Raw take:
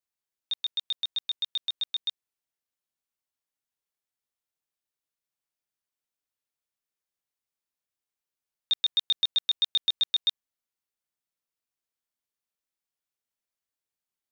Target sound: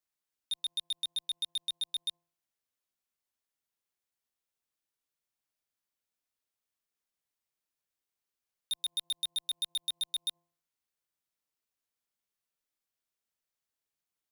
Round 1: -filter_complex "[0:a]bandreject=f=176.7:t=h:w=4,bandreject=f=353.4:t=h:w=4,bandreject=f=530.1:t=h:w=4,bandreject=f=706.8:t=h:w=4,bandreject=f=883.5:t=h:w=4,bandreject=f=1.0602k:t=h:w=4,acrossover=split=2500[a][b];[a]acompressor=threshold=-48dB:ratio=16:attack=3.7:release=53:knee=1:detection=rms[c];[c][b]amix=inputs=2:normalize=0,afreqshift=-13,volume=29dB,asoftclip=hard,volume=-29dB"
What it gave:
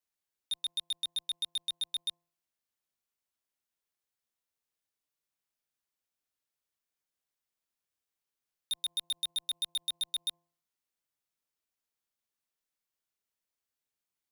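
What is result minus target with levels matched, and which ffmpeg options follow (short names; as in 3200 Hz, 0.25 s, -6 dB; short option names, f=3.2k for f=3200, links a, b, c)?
compressor: peak gain reduction -7.5 dB
-filter_complex "[0:a]bandreject=f=176.7:t=h:w=4,bandreject=f=353.4:t=h:w=4,bandreject=f=530.1:t=h:w=4,bandreject=f=706.8:t=h:w=4,bandreject=f=883.5:t=h:w=4,bandreject=f=1.0602k:t=h:w=4,acrossover=split=2500[a][b];[a]acompressor=threshold=-56dB:ratio=16:attack=3.7:release=53:knee=1:detection=rms[c];[c][b]amix=inputs=2:normalize=0,afreqshift=-13,volume=29dB,asoftclip=hard,volume=-29dB"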